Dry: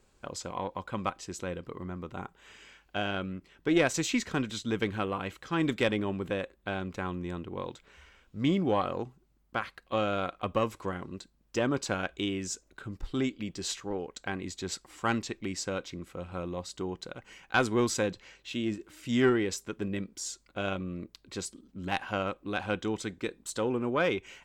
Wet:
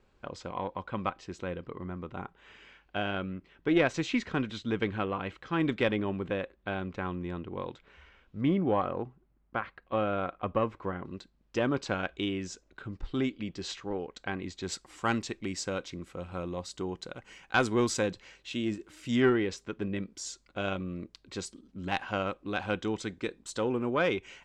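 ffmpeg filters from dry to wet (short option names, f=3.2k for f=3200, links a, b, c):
-af "asetnsamples=n=441:p=0,asendcmd='8.41 lowpass f 2100;11.05 lowpass f 4400;14.63 lowpass f 9600;19.16 lowpass f 4300;20.07 lowpass f 7100',lowpass=3.5k"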